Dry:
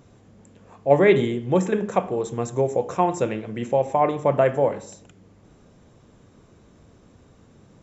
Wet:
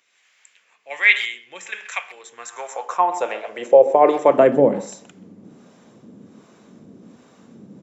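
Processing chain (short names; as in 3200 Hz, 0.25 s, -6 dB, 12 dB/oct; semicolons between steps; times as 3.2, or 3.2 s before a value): speakerphone echo 0.13 s, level -16 dB; harmonic tremolo 1.3 Hz, depth 70%, crossover 550 Hz; high-pass sweep 2200 Hz -> 210 Hz, 2.11–4.71; gain +7 dB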